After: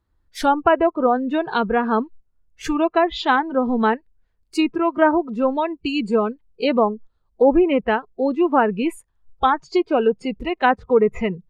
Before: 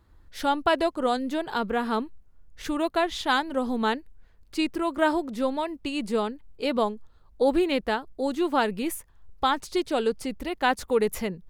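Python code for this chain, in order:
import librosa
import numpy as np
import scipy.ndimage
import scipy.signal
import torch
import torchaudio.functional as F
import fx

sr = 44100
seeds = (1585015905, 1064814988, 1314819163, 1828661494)

y = fx.env_lowpass_down(x, sr, base_hz=1600.0, full_db=-19.5)
y = fx.noise_reduce_blind(y, sr, reduce_db=19)
y = F.gain(torch.from_numpy(y), 7.5).numpy()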